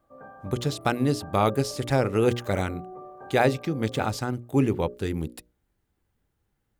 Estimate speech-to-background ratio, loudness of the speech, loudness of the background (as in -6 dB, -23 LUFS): 19.0 dB, -26.0 LUFS, -45.0 LUFS